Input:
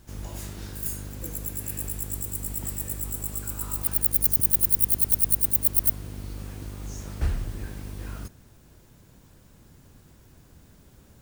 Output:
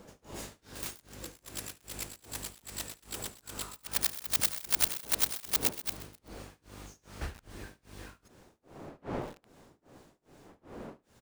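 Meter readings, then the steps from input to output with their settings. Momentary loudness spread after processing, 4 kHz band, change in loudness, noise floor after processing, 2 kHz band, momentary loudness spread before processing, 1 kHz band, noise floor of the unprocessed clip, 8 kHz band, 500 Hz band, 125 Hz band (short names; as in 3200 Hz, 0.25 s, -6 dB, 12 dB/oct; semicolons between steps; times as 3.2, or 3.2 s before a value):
22 LU, +8.0 dB, -9.5 dB, -74 dBFS, +4.0 dB, 19 LU, +2.0 dB, -55 dBFS, -6.5 dB, 0.0 dB, -14.0 dB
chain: median filter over 3 samples; wind noise 360 Hz -39 dBFS; low shelf 190 Hz -8 dB; tremolo 2.5 Hz, depth 100%; low shelf 400 Hz -5.5 dB; echo 73 ms -20 dB; lo-fi delay 0.128 s, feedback 55%, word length 6-bit, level -13 dB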